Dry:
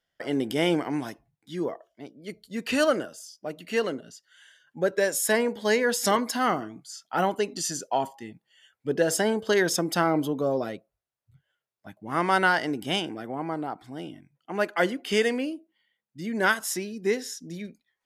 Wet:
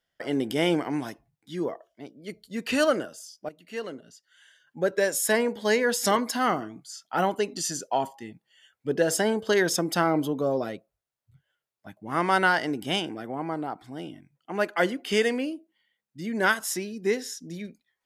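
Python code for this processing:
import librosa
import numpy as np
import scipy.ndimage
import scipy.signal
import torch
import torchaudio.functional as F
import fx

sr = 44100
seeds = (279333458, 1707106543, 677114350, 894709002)

y = fx.edit(x, sr, fx.fade_in_from(start_s=3.49, length_s=1.43, floor_db=-13.0), tone=tone)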